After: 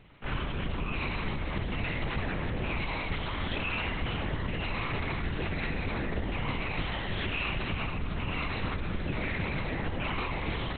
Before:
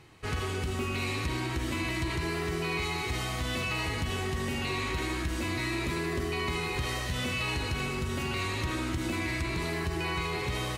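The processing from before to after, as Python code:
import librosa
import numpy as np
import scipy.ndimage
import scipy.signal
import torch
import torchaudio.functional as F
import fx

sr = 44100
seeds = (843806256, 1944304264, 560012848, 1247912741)

y = fx.lpc_vocoder(x, sr, seeds[0], excitation='whisper', order=8)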